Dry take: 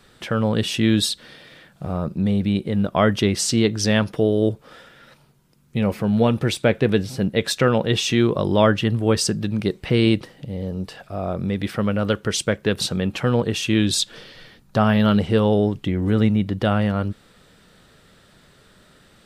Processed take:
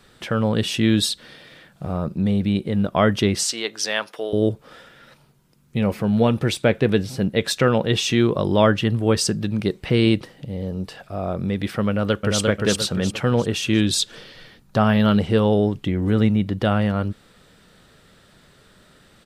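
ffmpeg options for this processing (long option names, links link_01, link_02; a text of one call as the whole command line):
ffmpeg -i in.wav -filter_complex "[0:a]asettb=1/sr,asplit=3[link_01][link_02][link_03];[link_01]atrim=end=3.434[link_04];[link_02]atrim=start=3.43:end=4.33,asetpts=PTS-STARTPTS,afade=type=in:duration=0.004:curve=qsin,afade=type=out:start_time=0.896:duration=0.004:curve=qsin,highpass=670[link_05];[link_03]atrim=start=4.326[link_06];[link_04][link_05]acrossfade=duration=0.004:curve1=hsin:curve2=qsin[link_07];[link_07][link_06]acrossfade=duration=0.004:curve1=qsin:curve2=hsin,asplit=2[link_08][link_09];[link_09]afade=type=in:start_time=11.88:duration=0.01,afade=type=out:start_time=12.41:duration=0.01,aecho=0:1:350|700|1050|1400|1750:0.794328|0.317731|0.127093|0.050837|0.0203348[link_10];[link_08][link_10]amix=inputs=2:normalize=0" out.wav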